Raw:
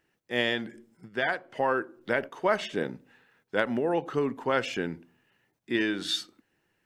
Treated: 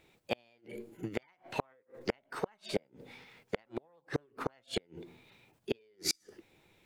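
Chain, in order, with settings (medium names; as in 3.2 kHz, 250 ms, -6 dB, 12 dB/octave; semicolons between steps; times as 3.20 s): bass shelf 160 Hz +6.5 dB; in parallel at +1 dB: compression 12:1, threshold -36 dBFS, peak gain reduction 18 dB; on the sum: inverted gate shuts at -17 dBFS, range -40 dB; formant shift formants +5 st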